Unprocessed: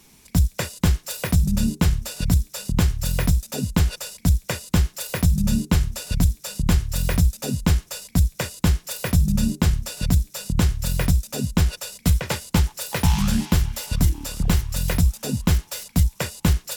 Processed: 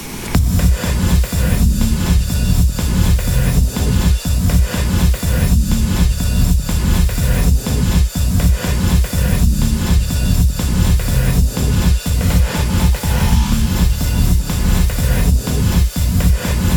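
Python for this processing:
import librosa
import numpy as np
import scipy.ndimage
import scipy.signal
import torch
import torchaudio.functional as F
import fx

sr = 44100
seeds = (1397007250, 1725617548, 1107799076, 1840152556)

y = fx.rev_gated(x, sr, seeds[0], gate_ms=320, shape='rising', drr_db=-7.0)
y = fx.band_squash(y, sr, depth_pct=100)
y = y * librosa.db_to_amplitude(-3.0)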